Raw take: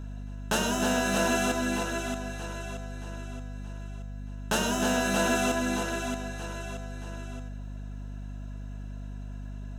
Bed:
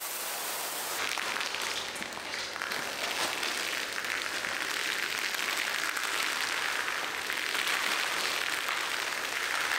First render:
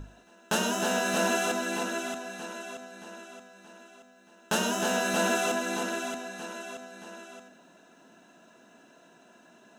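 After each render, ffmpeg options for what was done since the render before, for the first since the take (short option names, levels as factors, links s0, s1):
-af "bandreject=f=50:t=h:w=6,bandreject=f=100:t=h:w=6,bandreject=f=150:t=h:w=6,bandreject=f=200:t=h:w=6,bandreject=f=250:t=h:w=6,bandreject=f=300:t=h:w=6"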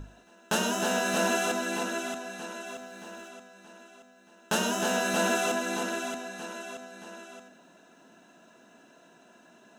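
-filter_complex "[0:a]asettb=1/sr,asplit=3[s0][s1][s2];[s0]atrim=end=2.664[s3];[s1]atrim=start=2.66:end=3.29,asetpts=PTS-STARTPTS,afade=t=in:d=0.004:c=qsin,afade=t=out:st=0.626:d=0.004:c=qsin,aeval=exprs='val(0)+0.5*0.00178*sgn(val(0))':c=same[s4];[s2]atrim=start=3.286[s5];[s3][s4]acrossfade=d=0.004:c1=hsin:c2=qsin[s6];[s6][s5]acrossfade=d=0.004:c1=qsin:c2=hsin"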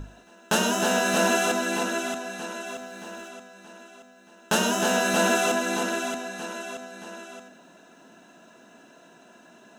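-af "volume=1.68"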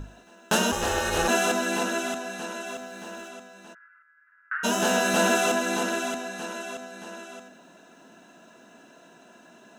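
-filter_complex "[0:a]asplit=3[s0][s1][s2];[s0]afade=t=out:st=0.71:d=0.02[s3];[s1]aeval=exprs='val(0)*sin(2*PI*160*n/s)':c=same,afade=t=in:st=0.71:d=0.02,afade=t=out:st=1.27:d=0.02[s4];[s2]afade=t=in:st=1.27:d=0.02[s5];[s3][s4][s5]amix=inputs=3:normalize=0,asplit=3[s6][s7][s8];[s6]afade=t=out:st=3.73:d=0.02[s9];[s7]asuperpass=centerf=1600:order=8:qfactor=2,afade=t=in:st=3.73:d=0.02,afade=t=out:st=4.63:d=0.02[s10];[s8]afade=t=in:st=4.63:d=0.02[s11];[s9][s10][s11]amix=inputs=3:normalize=0"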